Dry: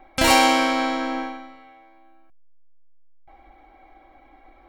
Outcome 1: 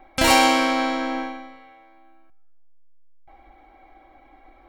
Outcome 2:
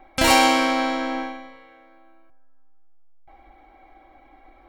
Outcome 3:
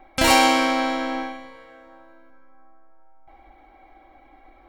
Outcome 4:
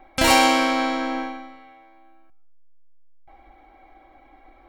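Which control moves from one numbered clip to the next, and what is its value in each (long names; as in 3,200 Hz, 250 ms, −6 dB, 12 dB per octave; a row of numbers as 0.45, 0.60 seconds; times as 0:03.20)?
dense smooth reverb, RT60: 1.1, 2.3, 4.8, 0.5 seconds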